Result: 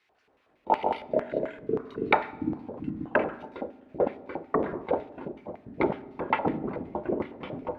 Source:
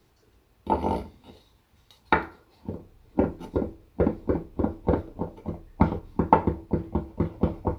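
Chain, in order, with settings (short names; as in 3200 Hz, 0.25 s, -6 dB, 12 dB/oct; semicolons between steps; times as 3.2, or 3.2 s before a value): dynamic EQ 3200 Hz, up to +8 dB, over -52 dBFS, Q 1.4; LFO band-pass square 5.4 Hz 670–2200 Hz; echoes that change speed 0.146 s, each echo -6 st, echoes 3; on a send: reverb RT60 1.2 s, pre-delay 4 ms, DRR 15 dB; on the sum: gain +5.5 dB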